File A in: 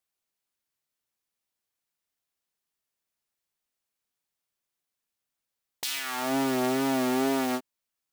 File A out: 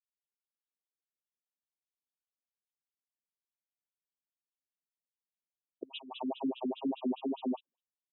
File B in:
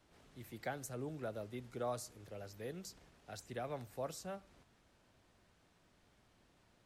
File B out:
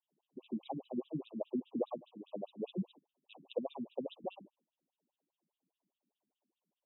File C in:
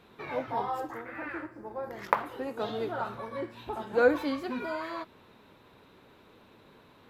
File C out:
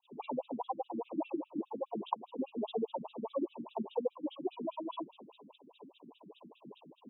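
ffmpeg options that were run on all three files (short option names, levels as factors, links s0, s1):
-af "agate=range=0.0631:threshold=0.00158:ratio=16:detection=peak,acompressor=threshold=0.01:ratio=16,asuperstop=centerf=1700:order=12:qfactor=1,lowshelf=f=130:g=10.5,afftfilt=real='re*between(b*sr/1024,210*pow(2800/210,0.5+0.5*sin(2*PI*4.9*pts/sr))/1.41,210*pow(2800/210,0.5+0.5*sin(2*PI*4.9*pts/sr))*1.41)':imag='im*between(b*sr/1024,210*pow(2800/210,0.5+0.5*sin(2*PI*4.9*pts/sr))/1.41,210*pow(2800/210,0.5+0.5*sin(2*PI*4.9*pts/sr))*1.41)':win_size=1024:overlap=0.75,volume=4.73"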